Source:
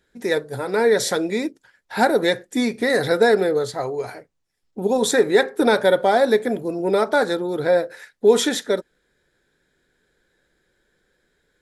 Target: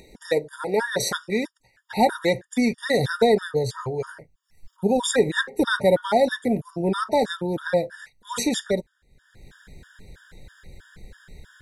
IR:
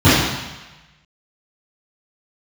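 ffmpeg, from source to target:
-af "acompressor=mode=upward:threshold=-34dB:ratio=2.5,asubboost=boost=6:cutoff=140,afftfilt=real='re*gt(sin(2*PI*3.1*pts/sr)*(1-2*mod(floor(b*sr/1024/940),2)),0)':imag='im*gt(sin(2*PI*3.1*pts/sr)*(1-2*mod(floor(b*sr/1024/940),2)),0)':win_size=1024:overlap=0.75,volume=1dB"

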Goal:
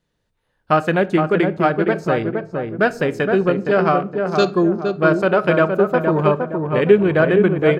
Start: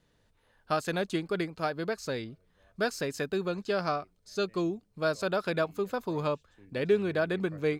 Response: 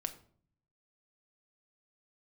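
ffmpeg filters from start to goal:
-filter_complex "[0:a]afwtdn=0.00891,asplit=2[link_01][link_02];[link_02]adelay=466,lowpass=frequency=1300:poles=1,volume=-4dB,asplit=2[link_03][link_04];[link_04]adelay=466,lowpass=frequency=1300:poles=1,volume=0.43,asplit=2[link_05][link_06];[link_06]adelay=466,lowpass=frequency=1300:poles=1,volume=0.43,asplit=2[link_07][link_08];[link_08]adelay=466,lowpass=frequency=1300:poles=1,volume=0.43,asplit=2[link_09][link_10];[link_10]adelay=466,lowpass=frequency=1300:poles=1,volume=0.43[link_11];[link_01][link_03][link_05][link_07][link_09][link_11]amix=inputs=6:normalize=0,asplit=2[link_12][link_13];[1:a]atrim=start_sample=2205[link_14];[link_13][link_14]afir=irnorm=-1:irlink=0,volume=-1dB[link_15];[link_12][link_15]amix=inputs=2:normalize=0,volume=8dB"

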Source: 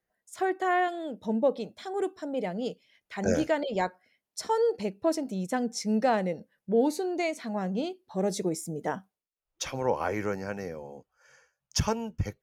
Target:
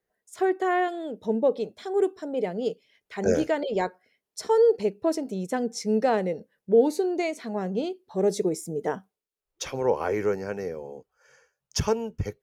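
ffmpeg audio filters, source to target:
ffmpeg -i in.wav -af "equalizer=frequency=420:width_type=o:width=0.41:gain=9.5" out.wav

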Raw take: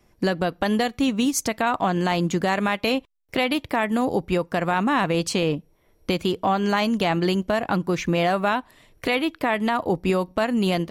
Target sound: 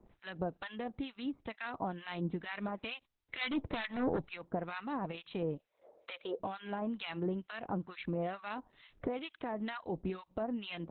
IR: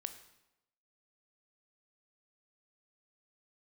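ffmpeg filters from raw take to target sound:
-filter_complex "[0:a]asettb=1/sr,asplit=3[link_01][link_02][link_03];[link_01]atrim=end=3.414[link_04];[link_02]atrim=start=3.41:end=4.29,asetpts=PTS-STARTPTS,afade=type=in:duration=0.004:curve=qsin,afade=type=out:start_time=0.876:duration=0.004:curve=qsin,aeval=exprs='0.335*sin(PI/2*2.82*val(0)/0.335)':channel_layout=same[link_05];[link_03]atrim=start=4.286[link_06];[link_04][link_05]acrossfade=duration=0.004:curve1=hsin:curve2=qsin[link_07];[link_07][link_06]acrossfade=duration=0.004:curve1=qsin:curve2=hsin,asplit=3[link_08][link_09][link_10];[link_08]afade=type=out:start_time=5.57:duration=0.02[link_11];[link_09]highpass=frequency=550:width_type=q:width=4.5,afade=type=in:start_time=5.57:duration=0.02,afade=type=out:start_time=6.39:duration=0.02[link_12];[link_10]afade=type=in:start_time=6.39:duration=0.02[link_13];[link_11][link_12][link_13]amix=inputs=3:normalize=0,acompressor=threshold=-40dB:ratio=2.5,acrossover=split=1100[link_14][link_15];[link_14]aeval=exprs='val(0)*(1-1/2+1/2*cos(2*PI*2.2*n/s))':channel_layout=same[link_16];[link_15]aeval=exprs='val(0)*(1-1/2-1/2*cos(2*PI*2.2*n/s))':channel_layout=same[link_17];[link_16][link_17]amix=inputs=2:normalize=0,volume=2.5dB" -ar 48000 -c:a libopus -b:a 8k

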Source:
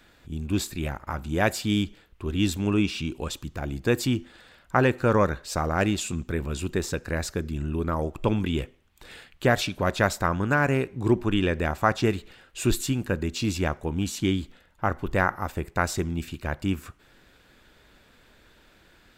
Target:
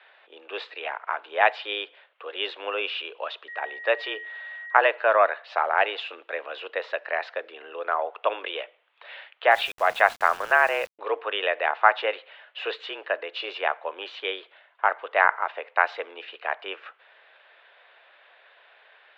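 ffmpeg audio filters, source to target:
ffmpeg -i in.wav -filter_complex "[0:a]asettb=1/sr,asplit=3[link_01][link_02][link_03];[link_01]atrim=end=3.484[link_04];[link_02]atrim=start=3.48:end=4.8,asetpts=PTS-STARTPTS,afade=type=in:duration=0.004:curve=qsin,afade=type=out:start_time=1.316:duration=0.004:curve=qsin,aeval=exprs='val(0)+0.00891*sin(2*PI*1800*n/s)':channel_layout=same[link_05];[link_03]atrim=start=4.796[link_06];[link_04][link_05]acrossfade=duration=0.004:curve1=hsin:curve2=qsin[link_07];[link_07][link_06]acrossfade=duration=0.004:curve1=qsin:curve2=hsin,highpass=frequency=480:width_type=q:width=0.5412,highpass=frequency=480:width_type=q:width=1.307,lowpass=frequency=3300:width_type=q:width=0.5176,lowpass=frequency=3300:width_type=q:width=0.7071,lowpass=frequency=3300:width_type=q:width=1.932,afreqshift=96,asettb=1/sr,asplit=3[link_08][link_09][link_10];[link_08]atrim=end=9.514[link_11];[link_09]atrim=start=9.51:end=10.99,asetpts=PTS-STARTPTS,afade=type=in:duration=0.004:curve=qsin,afade=type=out:start_time=1.476:duration=0.004:curve=qsin,aeval=exprs='val(0)*gte(abs(val(0)),0.00708)':channel_layout=same[link_12];[link_10]atrim=start=10.986[link_13];[link_11][link_12]acrossfade=duration=0.004:curve1=hsin:curve2=qsin[link_14];[link_14][link_13]acrossfade=duration=0.004:curve1=qsin:curve2=hsin,volume=5dB" out.wav

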